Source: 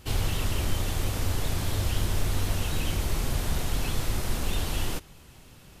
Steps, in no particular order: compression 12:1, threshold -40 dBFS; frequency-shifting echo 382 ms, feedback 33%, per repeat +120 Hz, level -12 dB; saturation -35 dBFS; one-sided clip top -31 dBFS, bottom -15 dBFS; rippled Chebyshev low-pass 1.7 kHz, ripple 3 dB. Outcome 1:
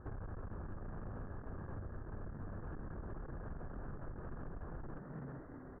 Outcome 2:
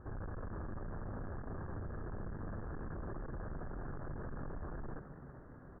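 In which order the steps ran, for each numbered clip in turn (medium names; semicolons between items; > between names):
one-sided clip > rippled Chebyshev low-pass > frequency-shifting echo > compression > saturation; one-sided clip > saturation > rippled Chebyshev low-pass > compression > frequency-shifting echo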